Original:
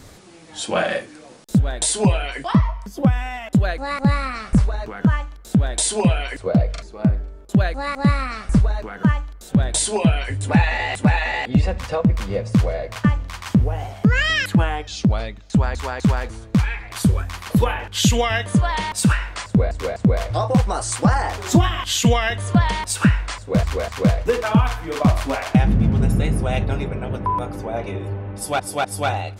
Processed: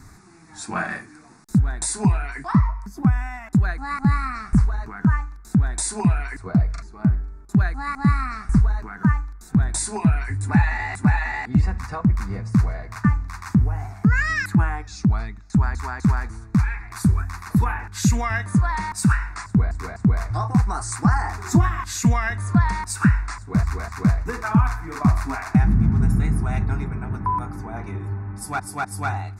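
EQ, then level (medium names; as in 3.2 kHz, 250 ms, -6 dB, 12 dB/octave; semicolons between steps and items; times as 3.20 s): treble shelf 10 kHz -8.5 dB; static phaser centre 1.3 kHz, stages 4; 0.0 dB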